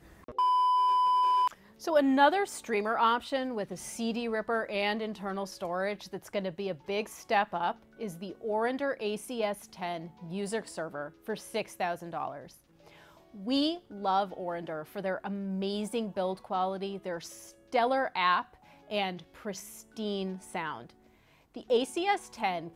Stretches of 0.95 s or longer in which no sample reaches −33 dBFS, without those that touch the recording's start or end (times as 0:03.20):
0:12.31–0:13.47